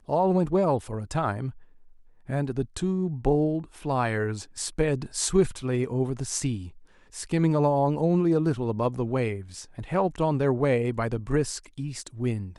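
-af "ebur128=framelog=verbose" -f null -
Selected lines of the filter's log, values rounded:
Integrated loudness:
  I:         -26.6 LUFS
  Threshold: -37.0 LUFS
Loudness range:
  LRA:         3.0 LU
  Threshold: -46.9 LUFS
  LRA low:   -28.6 LUFS
  LRA high:  -25.6 LUFS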